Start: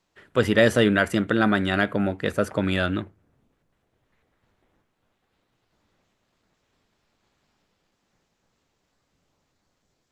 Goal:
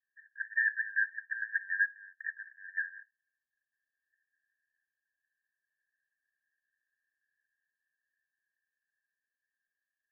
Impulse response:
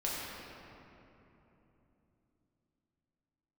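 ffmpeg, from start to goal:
-af "asuperpass=centerf=1700:order=12:qfactor=6.8"

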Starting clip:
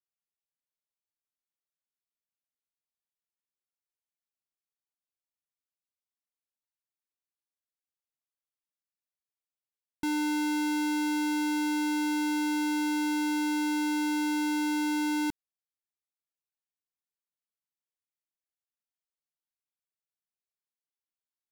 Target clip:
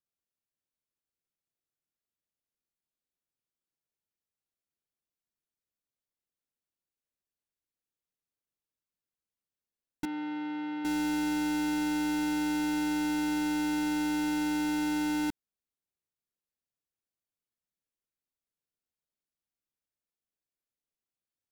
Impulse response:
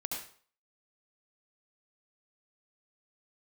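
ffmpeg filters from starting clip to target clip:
-filter_complex "[0:a]asplit=2[a][b];[b]acrusher=samples=41:mix=1:aa=0.000001,volume=-7.5dB[c];[a][c]amix=inputs=2:normalize=0,asettb=1/sr,asplit=3[d][e][f];[d]atrim=end=10.054[g];[e]atrim=start=10.05:end=10.85,asetpts=PTS-STARTPTS,afade=t=in:d=0.004:c=qsin,afade=t=out:st=0.796:d=0.004:c=qsin,highpass=320,equalizer=f=390:t=q:w=4:g=-8,equalizer=f=640:t=q:w=4:g=-9,equalizer=f=1k:t=q:w=4:g=-4,equalizer=f=1.6k:t=q:w=4:g=-8,equalizer=f=2.5k:t=q:w=4:g=-7,lowpass=f=2.8k:w=0.5412,lowpass=f=2.8k:w=1.3066[h];[f]atrim=start=10.846[i];[g][h]acrossfade=d=0.004:c1=hsin:c2=qsin[j];[j][i]acrossfade=d=0.004:c1=qsin:c2=hsin,volume=-3dB"

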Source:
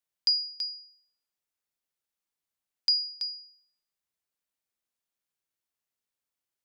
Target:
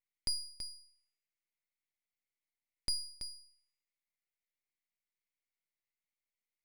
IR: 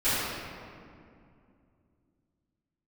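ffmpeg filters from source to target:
-af "highpass=f=2.1k:t=q:w=7.3,aeval=exprs='max(val(0),0)':c=same,volume=-8dB"

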